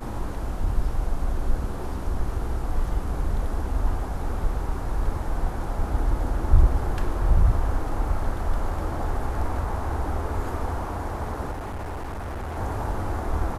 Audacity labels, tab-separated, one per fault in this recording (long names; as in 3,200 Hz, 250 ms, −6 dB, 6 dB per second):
11.510000	12.580000	clipping −29 dBFS